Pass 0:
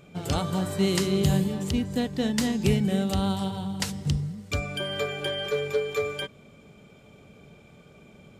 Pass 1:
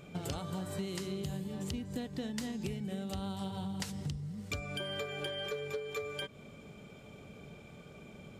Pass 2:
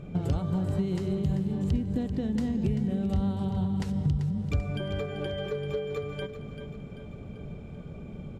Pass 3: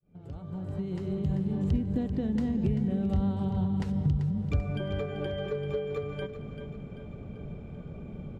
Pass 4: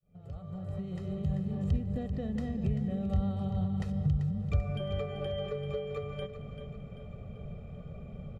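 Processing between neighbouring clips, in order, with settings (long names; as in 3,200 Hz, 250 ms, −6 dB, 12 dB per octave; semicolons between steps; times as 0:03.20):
downward compressor 12 to 1, threshold −35 dBFS, peak gain reduction 18 dB
spectral tilt −3.5 dB per octave; repeating echo 389 ms, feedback 51%, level −10.5 dB; level +2 dB
fade in at the beginning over 1.54 s; high-shelf EQ 4,000 Hz −10 dB
comb filter 1.6 ms, depth 71%; level −4.5 dB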